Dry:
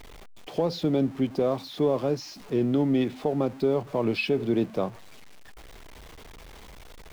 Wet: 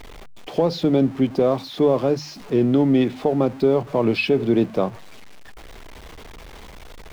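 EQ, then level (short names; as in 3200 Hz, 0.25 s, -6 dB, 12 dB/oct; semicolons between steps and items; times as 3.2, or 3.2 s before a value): high shelf 5600 Hz -4.5 dB; notches 50/100/150 Hz; +6.5 dB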